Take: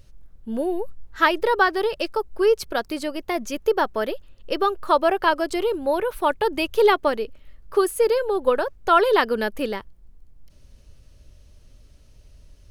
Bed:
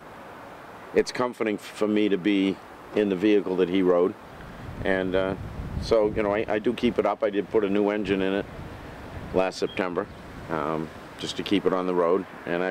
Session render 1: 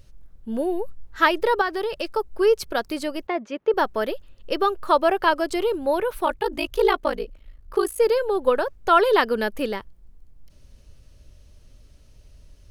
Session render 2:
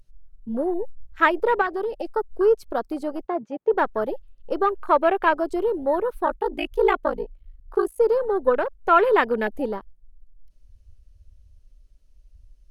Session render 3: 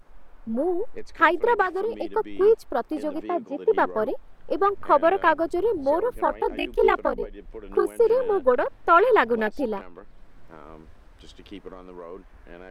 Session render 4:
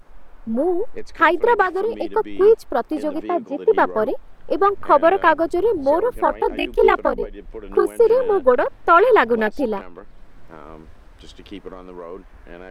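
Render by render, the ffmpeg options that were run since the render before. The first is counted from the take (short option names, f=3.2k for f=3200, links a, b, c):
-filter_complex "[0:a]asettb=1/sr,asplit=3[a][b][c];[a]atrim=end=1.614[d];[b]atrim=start=1.61:end=2.16,asetpts=PTS-STARTPTS,afade=t=in:d=0.004:c=qsin,afade=t=out:st=0.546:d=0.004:c=qsin,acompressor=threshold=-24dB:ratio=2:attack=3.2:release=140:knee=1:detection=peak[e];[c]atrim=start=2.156[f];[d][e]acrossfade=d=0.004:c1=hsin:c2=qsin[g];[g][f]acrossfade=d=0.004:c1=qsin:c2=hsin,asettb=1/sr,asplit=3[h][i][j];[h]atrim=end=3.274[k];[i]atrim=start=3.27:end=3.74,asetpts=PTS-STARTPTS,afade=t=in:d=0.004:c=qsin,afade=t=out:st=0.466:d=0.004:c=qsin,highpass=250,lowpass=2.4k[l];[j]atrim=start=3.736[m];[k][l]acrossfade=d=0.004:c1=hsin:c2=qsin[n];[n][m]acrossfade=d=0.004:c1=qsin:c2=hsin,asettb=1/sr,asplit=3[o][p][q];[o]atrim=end=6.254[r];[p]atrim=start=6.25:end=8,asetpts=PTS-STARTPTS,afade=t=in:d=0.004:c=qsin,afade=t=out:st=1.746:d=0.004:c=qsin,aeval=exprs='val(0)*sin(2*PI*27*n/s)':c=same[s];[q]atrim=start=7.996[t];[r][s]acrossfade=d=0.004:c1=hsin:c2=qsin[u];[u][t]acrossfade=d=0.004:c1=qsin:c2=hsin"
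-af "afwtdn=0.0355,equalizer=f=12k:t=o:w=1.3:g=4"
-filter_complex "[1:a]volume=-17.5dB[a];[0:a][a]amix=inputs=2:normalize=0"
-af "volume=5dB,alimiter=limit=-2dB:level=0:latency=1"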